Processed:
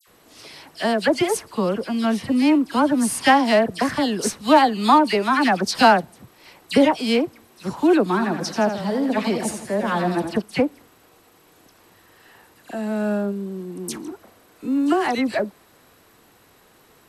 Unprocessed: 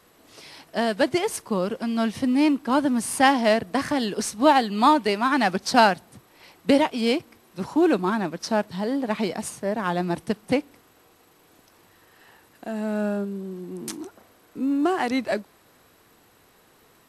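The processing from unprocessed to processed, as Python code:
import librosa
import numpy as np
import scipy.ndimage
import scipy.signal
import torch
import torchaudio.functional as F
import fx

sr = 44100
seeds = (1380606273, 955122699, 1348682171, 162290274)

y = fx.dispersion(x, sr, late='lows', ms=73.0, hz=2200.0)
y = fx.echo_warbled(y, sr, ms=83, feedback_pct=55, rate_hz=2.8, cents=99, wet_db=-9, at=(8.07, 10.42))
y = y * 10.0 ** (3.0 / 20.0)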